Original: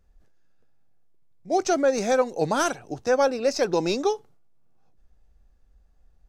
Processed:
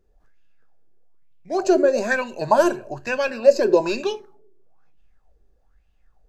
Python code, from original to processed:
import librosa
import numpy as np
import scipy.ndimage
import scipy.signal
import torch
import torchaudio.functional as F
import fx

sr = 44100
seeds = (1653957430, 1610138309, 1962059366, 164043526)

y = fx.ripple_eq(x, sr, per_octave=1.4, db=12, at=(1.54, 4.11))
y = fx.room_shoebox(y, sr, seeds[0], volume_m3=420.0, walls='furnished', distance_m=0.46)
y = fx.bell_lfo(y, sr, hz=1.1, low_hz=360.0, high_hz=2900.0, db=17)
y = F.gain(torch.from_numpy(y), -3.5).numpy()